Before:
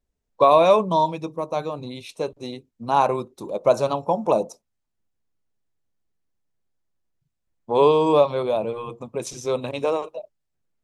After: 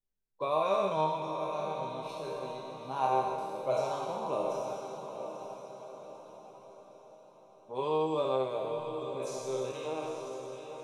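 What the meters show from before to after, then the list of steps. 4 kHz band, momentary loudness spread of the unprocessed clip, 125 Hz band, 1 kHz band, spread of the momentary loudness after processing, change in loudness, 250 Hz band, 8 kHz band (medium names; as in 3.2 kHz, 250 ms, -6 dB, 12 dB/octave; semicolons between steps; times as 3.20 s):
-10.5 dB, 17 LU, -11.5 dB, -10.0 dB, 17 LU, -12.5 dB, -12.5 dB, no reading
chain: spectral sustain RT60 2.37 s; chord resonator C3 minor, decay 0.21 s; echo that smears into a reverb 878 ms, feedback 47%, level -8.5 dB; trim -4.5 dB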